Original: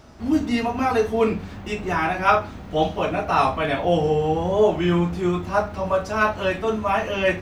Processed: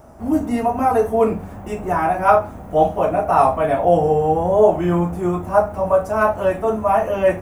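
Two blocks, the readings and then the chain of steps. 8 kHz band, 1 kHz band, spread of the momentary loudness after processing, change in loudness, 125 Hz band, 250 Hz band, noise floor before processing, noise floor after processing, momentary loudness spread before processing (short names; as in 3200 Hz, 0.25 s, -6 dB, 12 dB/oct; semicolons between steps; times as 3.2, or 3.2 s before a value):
n/a, +5.0 dB, 6 LU, +4.0 dB, +1.5 dB, +1.5 dB, -37 dBFS, -35 dBFS, 5 LU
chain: EQ curve 390 Hz 0 dB, 670 Hz +7 dB, 4200 Hz -16 dB, 9800 Hz +7 dB; gain +1.5 dB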